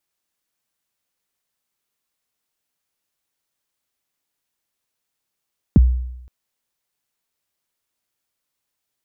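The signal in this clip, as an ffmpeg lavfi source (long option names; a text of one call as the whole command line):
ffmpeg -f lavfi -i "aevalsrc='0.562*pow(10,-3*t/0.86)*sin(2*PI*(300*0.024/log(62/300)*(exp(log(62/300)*min(t,0.024)/0.024)-1)+62*max(t-0.024,0)))':duration=0.52:sample_rate=44100" out.wav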